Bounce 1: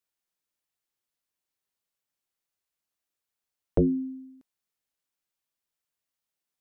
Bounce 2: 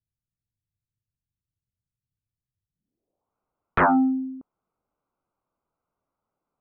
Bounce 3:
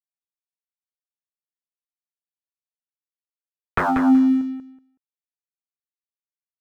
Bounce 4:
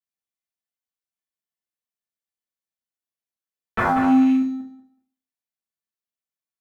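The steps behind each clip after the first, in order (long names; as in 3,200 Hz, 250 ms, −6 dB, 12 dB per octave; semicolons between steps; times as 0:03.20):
adaptive Wiener filter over 25 samples; sine wavefolder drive 14 dB, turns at −14 dBFS; low-pass filter sweep 110 Hz → 1,400 Hz, 0:02.66–0:03.35; level −3 dB
compressor whose output falls as the input rises −24 dBFS, ratio −1; dead-zone distortion −46.5 dBFS; on a send: repeating echo 187 ms, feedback 17%, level −6.5 dB; on the sum: level +7 dB
loose part that buzzes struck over −23 dBFS, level −26 dBFS; tuned comb filter 160 Hz, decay 0.27 s, harmonics odd, mix 70%; convolution reverb RT60 0.45 s, pre-delay 5 ms, DRR −8 dB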